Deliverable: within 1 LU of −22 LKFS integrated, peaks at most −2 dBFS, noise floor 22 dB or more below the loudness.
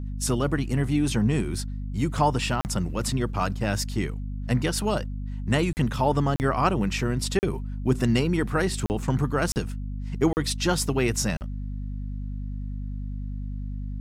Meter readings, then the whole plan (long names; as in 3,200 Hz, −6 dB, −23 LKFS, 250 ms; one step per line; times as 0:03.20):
number of dropouts 8; longest dropout 39 ms; mains hum 50 Hz; hum harmonics up to 250 Hz; level of the hum −29 dBFS; integrated loudness −26.5 LKFS; sample peak −9.0 dBFS; target loudness −22.0 LKFS
→ repair the gap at 0:02.61/0:05.73/0:06.36/0:07.39/0:08.86/0:09.52/0:10.33/0:11.37, 39 ms
hum removal 50 Hz, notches 5
level +4.5 dB